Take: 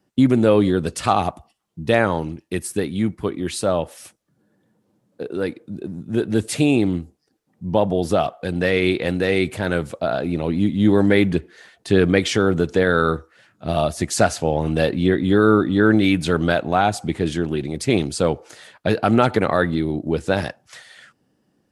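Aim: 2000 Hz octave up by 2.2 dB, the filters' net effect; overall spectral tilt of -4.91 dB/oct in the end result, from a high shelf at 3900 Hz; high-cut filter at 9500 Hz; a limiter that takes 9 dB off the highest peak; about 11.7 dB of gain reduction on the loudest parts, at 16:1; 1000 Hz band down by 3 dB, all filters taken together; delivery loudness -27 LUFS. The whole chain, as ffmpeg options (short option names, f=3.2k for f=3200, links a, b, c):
-af "lowpass=9.5k,equalizer=f=1k:t=o:g=-6.5,equalizer=f=2k:t=o:g=4.5,highshelf=f=3.9k:g=3,acompressor=threshold=-22dB:ratio=16,volume=3dB,alimiter=limit=-14.5dB:level=0:latency=1"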